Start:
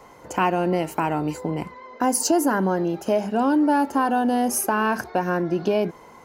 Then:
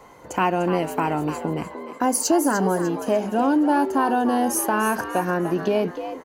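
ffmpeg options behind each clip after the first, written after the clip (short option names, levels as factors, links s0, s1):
-filter_complex "[0:a]bandreject=f=5200:w=15,asplit=5[s0][s1][s2][s3][s4];[s1]adelay=298,afreqshift=85,volume=0.299[s5];[s2]adelay=596,afreqshift=170,volume=0.114[s6];[s3]adelay=894,afreqshift=255,volume=0.0432[s7];[s4]adelay=1192,afreqshift=340,volume=0.0164[s8];[s0][s5][s6][s7][s8]amix=inputs=5:normalize=0"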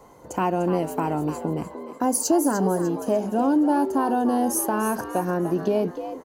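-af "equalizer=f=2200:t=o:w=1.9:g=-9.5"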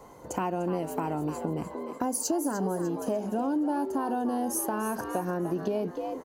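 -af "acompressor=threshold=0.0355:ratio=2.5"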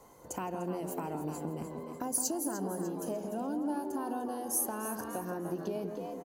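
-filter_complex "[0:a]aemphasis=mode=production:type=cd,asplit=2[s0][s1];[s1]adelay=165,lowpass=f=910:p=1,volume=0.562,asplit=2[s2][s3];[s3]adelay=165,lowpass=f=910:p=1,volume=0.53,asplit=2[s4][s5];[s5]adelay=165,lowpass=f=910:p=1,volume=0.53,asplit=2[s6][s7];[s7]adelay=165,lowpass=f=910:p=1,volume=0.53,asplit=2[s8][s9];[s9]adelay=165,lowpass=f=910:p=1,volume=0.53,asplit=2[s10][s11];[s11]adelay=165,lowpass=f=910:p=1,volume=0.53,asplit=2[s12][s13];[s13]adelay=165,lowpass=f=910:p=1,volume=0.53[s14];[s0][s2][s4][s6][s8][s10][s12][s14]amix=inputs=8:normalize=0,volume=0.422"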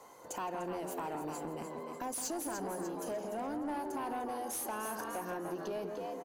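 -filter_complex "[0:a]asplit=2[s0][s1];[s1]highpass=f=720:p=1,volume=10,asoftclip=type=tanh:threshold=0.119[s2];[s0][s2]amix=inputs=2:normalize=0,lowpass=f=5400:p=1,volume=0.501,volume=0.355"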